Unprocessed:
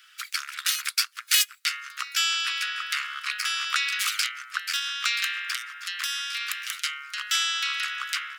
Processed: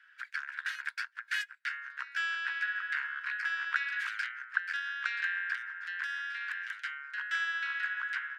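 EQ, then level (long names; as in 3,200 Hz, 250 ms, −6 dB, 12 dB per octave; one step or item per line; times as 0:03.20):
pair of resonant band-passes 1,200 Hz, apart 0.88 octaves
parametric band 1,200 Hz +8 dB 0.88 octaves
0.0 dB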